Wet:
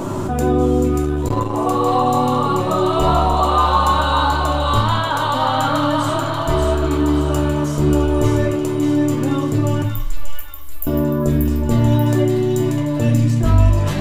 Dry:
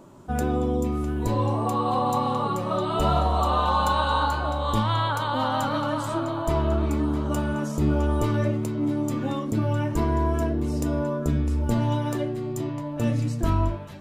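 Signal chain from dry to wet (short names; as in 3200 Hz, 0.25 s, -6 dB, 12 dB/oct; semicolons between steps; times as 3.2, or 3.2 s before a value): 9.82–10.87 inverse Chebyshev band-stop 110–4400 Hz, stop band 70 dB; in parallel at +1.5 dB: negative-ratio compressor -44 dBFS, ratio -1; on the sum: thin delay 0.585 s, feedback 49%, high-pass 1700 Hz, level -3 dB; reverb RT60 0.50 s, pre-delay 6 ms, DRR 1.5 dB; 1.02–1.65 core saturation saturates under 190 Hz; gain +4 dB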